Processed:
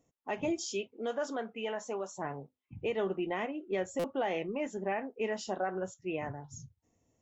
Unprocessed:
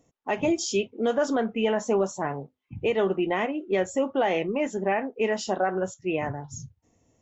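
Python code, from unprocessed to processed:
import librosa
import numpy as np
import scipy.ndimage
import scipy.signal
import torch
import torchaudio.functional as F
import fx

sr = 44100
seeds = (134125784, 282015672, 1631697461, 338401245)

y = fx.highpass(x, sr, hz=fx.line((0.61, 250.0), (2.16, 730.0)), slope=6, at=(0.61, 2.16), fade=0.02)
y = fx.buffer_glitch(y, sr, at_s=(3.99,), block=256, repeats=8)
y = y * librosa.db_to_amplitude(-8.5)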